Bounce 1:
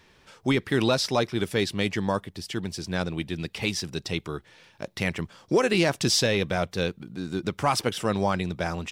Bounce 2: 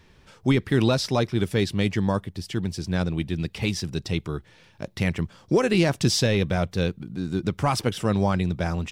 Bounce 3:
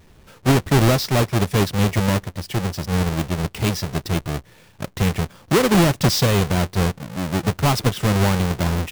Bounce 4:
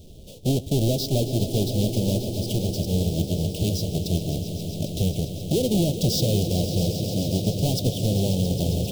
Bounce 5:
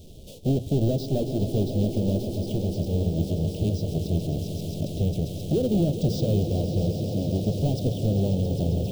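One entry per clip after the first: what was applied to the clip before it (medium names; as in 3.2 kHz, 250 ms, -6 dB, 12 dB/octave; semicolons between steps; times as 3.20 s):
bass shelf 220 Hz +11 dB; trim -1.5 dB
square wave that keeps the level
compression 2:1, threshold -34 dBFS, peak gain reduction 12 dB; elliptic band-stop 630–3200 Hz, stop band 60 dB; echo with a slow build-up 134 ms, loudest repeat 5, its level -13 dB; trim +5.5 dB
hum notches 60/120/180 Hz; de-esser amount 80%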